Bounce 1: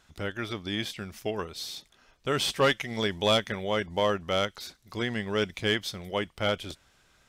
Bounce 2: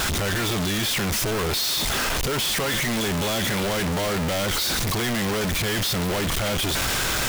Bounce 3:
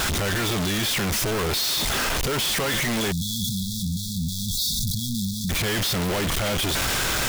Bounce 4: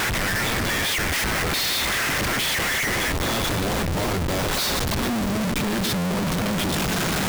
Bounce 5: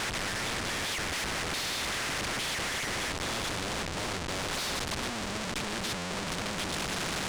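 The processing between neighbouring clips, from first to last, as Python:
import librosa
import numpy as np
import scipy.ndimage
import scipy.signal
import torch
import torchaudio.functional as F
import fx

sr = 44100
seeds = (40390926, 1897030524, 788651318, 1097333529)

y1 = np.sign(x) * np.sqrt(np.mean(np.square(x)))
y1 = y1 * librosa.db_to_amplitude(6.5)
y2 = fx.spec_erase(y1, sr, start_s=3.12, length_s=2.38, low_hz=250.0, high_hz=3300.0)
y3 = fx.echo_split(y2, sr, split_hz=480.0, low_ms=112, high_ms=207, feedback_pct=52, wet_db=-12.5)
y3 = fx.filter_sweep_highpass(y3, sr, from_hz=1900.0, to_hz=190.0, start_s=3.07, end_s=5.79, q=3.4)
y3 = fx.schmitt(y3, sr, flips_db=-26.0)
y4 = fx.air_absorb(y3, sr, metres=100.0)
y4 = fx.spectral_comp(y4, sr, ratio=2.0)
y4 = y4 * librosa.db_to_amplitude(-1.5)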